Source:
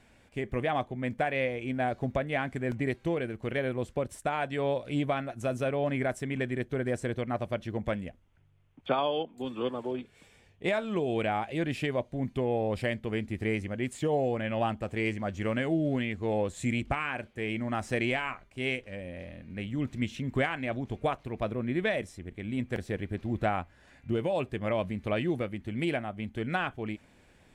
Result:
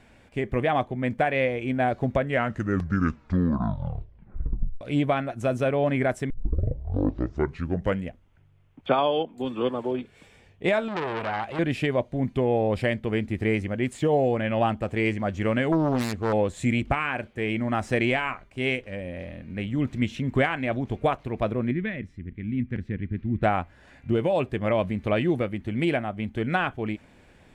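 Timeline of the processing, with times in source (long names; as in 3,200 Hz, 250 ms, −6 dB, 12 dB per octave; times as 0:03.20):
0:02.14: tape stop 2.67 s
0:06.30: tape start 1.77 s
0:10.88–0:11.59: saturating transformer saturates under 2,000 Hz
0:15.72–0:16.33: phase distortion by the signal itself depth 0.49 ms
0:21.71–0:23.43: drawn EQ curve 240 Hz 0 dB, 680 Hz −20 dB, 2,000 Hz −5 dB, 9,400 Hz −26 dB
whole clip: high-shelf EQ 4,500 Hz −6.5 dB; level +6 dB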